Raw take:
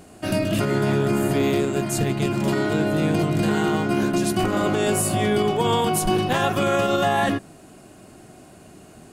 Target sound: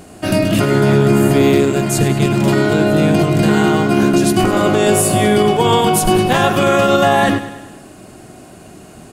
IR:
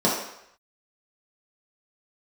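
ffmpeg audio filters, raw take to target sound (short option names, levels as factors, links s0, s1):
-af "aecho=1:1:101|202|303|404|505|606:0.224|0.125|0.0702|0.0393|0.022|0.0123,volume=2.37"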